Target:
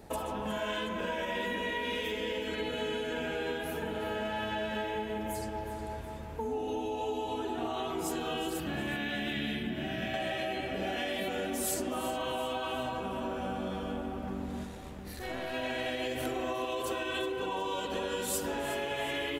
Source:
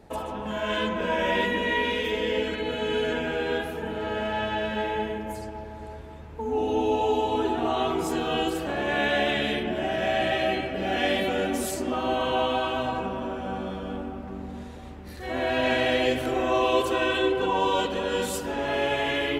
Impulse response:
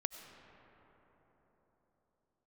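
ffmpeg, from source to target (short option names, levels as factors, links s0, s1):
-filter_complex "[0:a]alimiter=limit=0.141:level=0:latency=1:release=168,asettb=1/sr,asplit=3[s0][s1][s2];[s0]atrim=end=8.604[s3];[s1]atrim=start=8.6:end=10.14,asetpts=PTS-STARTPTS,afade=t=in:d=0.004:c=qsin,afade=t=out:st=1.536:d=0.004:c=qsin,equalizer=f=125:t=o:w=1:g=5,equalizer=f=250:t=o:w=1:g=5,equalizer=f=500:t=o:w=1:g=-10,equalizer=f=1000:t=o:w=1:g=-6,equalizer=f=8000:t=o:w=1:g=-9[s4];[s2]atrim=start=10.136[s5];[s3][s4]acrossfade=d=0.004:c1=hsin:c2=qsin[s6];[s6][s5]acrossfade=d=0.004:c1=qsin:c2=hsin,acompressor=threshold=0.0251:ratio=6,asettb=1/sr,asplit=3[s7][s8][s9];[s7]atrim=end=14.654[s10];[s8]atrim=start=14.65:end=15.54,asetpts=PTS-STARTPTS,afade=t=in:d=0.004:c=qsin,afade=t=out:st=0.886:d=0.004:c=qsin,aeval=exprs='(tanh(28.2*val(0)+0.6)-tanh(0.6))/28.2':c=same[s11];[s9]atrim=start=15.536[s12];[s10][s11]acrossfade=d=0.004:c1=hsin:c2=qsin[s13];[s13][s12]acrossfade=d=0.004:c1=qsin:c2=hsin,highshelf=f=7400:g=11,aecho=1:1:365|730|1095|1460|1825:0.224|0.103|0.0474|0.0218|0.01"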